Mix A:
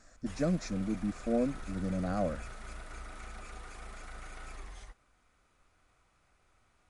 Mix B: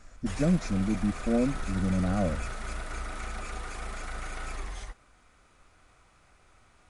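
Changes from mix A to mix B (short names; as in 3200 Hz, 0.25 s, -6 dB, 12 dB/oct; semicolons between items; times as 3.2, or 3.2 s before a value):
speech: add low shelf 210 Hz +11.5 dB; background +9.0 dB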